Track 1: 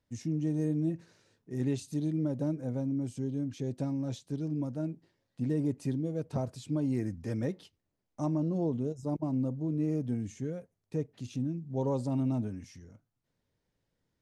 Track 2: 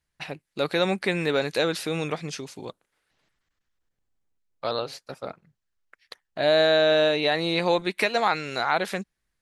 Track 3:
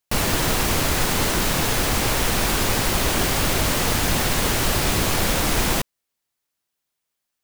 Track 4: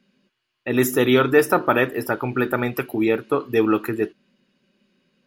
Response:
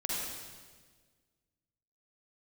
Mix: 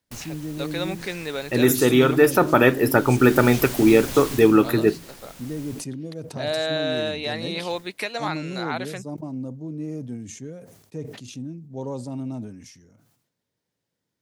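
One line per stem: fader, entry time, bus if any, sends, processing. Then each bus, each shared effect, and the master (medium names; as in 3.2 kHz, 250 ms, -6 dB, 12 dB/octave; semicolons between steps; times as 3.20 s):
-0.5 dB, 0.00 s, no send, high-pass 120 Hz; decay stretcher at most 75 dB/s
-6.5 dB, 0.00 s, no send, none
-14.5 dB, 0.00 s, no send, auto duck -13 dB, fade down 0.30 s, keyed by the second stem
-0.5 dB, 0.85 s, no send, bass shelf 460 Hz +6.5 dB; gain riding 0.5 s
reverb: none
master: treble shelf 3.8 kHz +6 dB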